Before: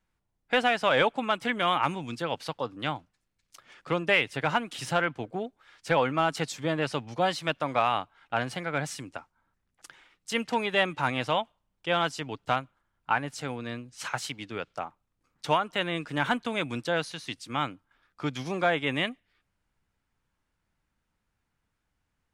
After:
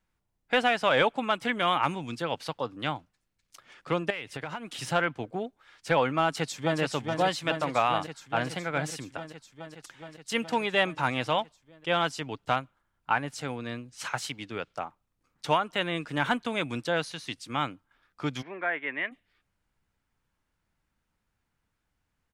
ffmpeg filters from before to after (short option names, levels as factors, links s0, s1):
-filter_complex "[0:a]asettb=1/sr,asplit=3[s0][s1][s2];[s0]atrim=end=4.104[s3];[s1]atrim=start=4.1:end=4.78,asetpts=PTS-STARTPTS,afade=t=in:d=0.004:c=qsin,afade=t=out:st=0.676:d=0.004:c=qsin,acompressor=threshold=0.0282:ratio=8:attack=3.2:release=140:knee=1:detection=peak[s4];[s2]atrim=start=4.776[s5];[s3][s4]acrossfade=d=0.004:c1=hsin:c2=qsin[s6];[s6][s5]acrossfade=d=0.004:c1=qsin:c2=hsin,asplit=2[s7][s8];[s8]afade=t=in:st=6.24:d=0.01,afade=t=out:st=6.8:d=0.01,aecho=0:1:420|840|1260|1680|2100|2520|2940|3360|3780|4200|4620|5040:0.530884|0.424708|0.339766|0.271813|0.21745|0.17396|0.139168|0.111335|0.0890676|0.0712541|0.0570033|0.0456026[s9];[s7][s9]amix=inputs=2:normalize=0,asplit=3[s10][s11][s12];[s10]afade=t=out:st=18.41:d=0.02[s13];[s11]highpass=490,equalizer=f=510:t=q:w=4:g=-8,equalizer=f=790:t=q:w=4:g=-9,equalizer=f=1200:t=q:w=4:g=-8,equalizer=f=1900:t=q:w=4:g=5,lowpass=f=2100:w=0.5412,lowpass=f=2100:w=1.3066,afade=t=in:st=18.41:d=0.02,afade=t=out:st=19.11:d=0.02[s14];[s12]afade=t=in:st=19.11:d=0.02[s15];[s13][s14][s15]amix=inputs=3:normalize=0"